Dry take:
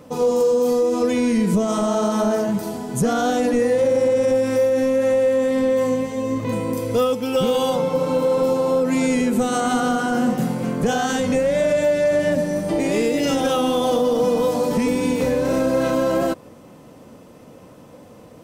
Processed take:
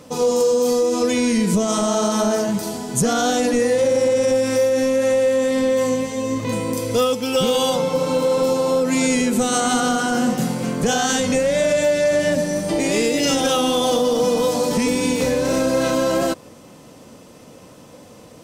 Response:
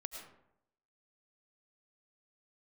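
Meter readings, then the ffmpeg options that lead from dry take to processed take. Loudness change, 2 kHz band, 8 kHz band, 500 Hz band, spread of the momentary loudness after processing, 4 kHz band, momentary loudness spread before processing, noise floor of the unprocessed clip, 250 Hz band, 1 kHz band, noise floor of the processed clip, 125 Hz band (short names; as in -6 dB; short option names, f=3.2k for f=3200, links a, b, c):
+1.0 dB, +3.0 dB, +8.5 dB, +0.5 dB, 4 LU, +6.5 dB, 5 LU, -45 dBFS, 0.0 dB, +1.0 dB, -44 dBFS, 0.0 dB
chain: -af "equalizer=f=6.1k:w=0.46:g=9"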